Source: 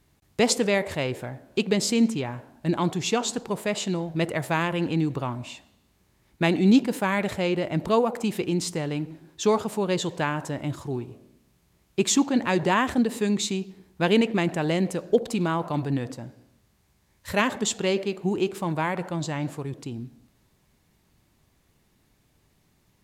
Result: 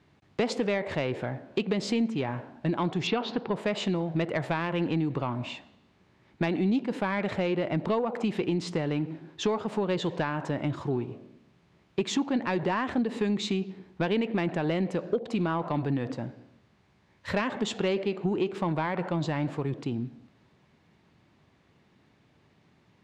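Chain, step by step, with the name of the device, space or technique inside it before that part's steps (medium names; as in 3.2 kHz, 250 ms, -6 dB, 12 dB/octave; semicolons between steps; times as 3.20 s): AM radio (band-pass 110–3300 Hz; compression 5:1, threshold -28 dBFS, peak gain reduction 13 dB; saturation -20.5 dBFS, distortion -22 dB); 3.07–3.56 s: inverse Chebyshev low-pass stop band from 8.6 kHz, stop band 40 dB; trim +4.5 dB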